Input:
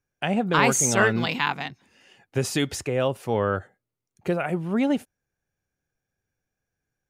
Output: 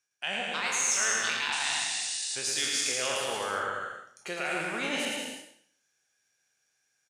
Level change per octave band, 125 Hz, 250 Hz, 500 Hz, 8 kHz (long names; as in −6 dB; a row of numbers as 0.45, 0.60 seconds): −22.0, −16.0, −11.0, +0.5 decibels